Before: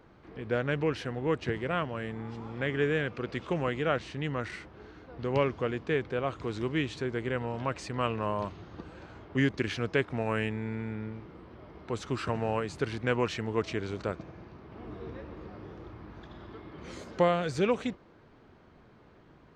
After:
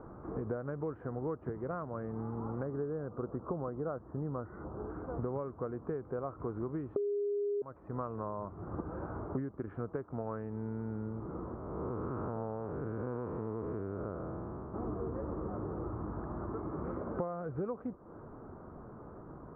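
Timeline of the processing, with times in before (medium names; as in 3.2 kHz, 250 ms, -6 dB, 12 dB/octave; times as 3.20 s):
2.63–4.90 s: Butterworth band-stop 3.2 kHz, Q 0.54
6.96–7.62 s: bleep 408 Hz -10 dBFS
11.55–14.74 s: spectral blur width 266 ms
whole clip: compression 16:1, threshold -42 dBFS; Chebyshev low-pass 1.3 kHz, order 4; trim +9 dB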